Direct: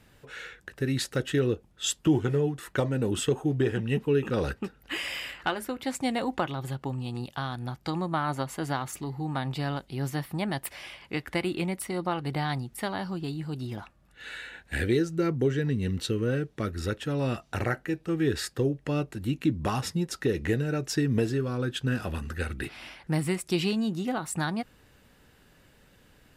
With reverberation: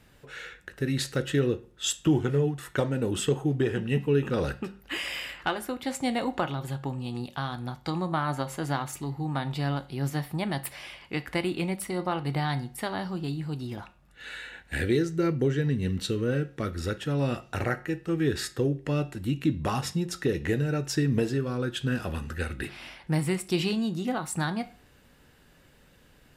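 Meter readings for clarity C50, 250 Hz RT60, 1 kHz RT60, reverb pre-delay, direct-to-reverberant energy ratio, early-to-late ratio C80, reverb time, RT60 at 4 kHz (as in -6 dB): 17.5 dB, 0.40 s, 0.40 s, 6 ms, 11.5 dB, 22.5 dB, 0.40 s, 0.35 s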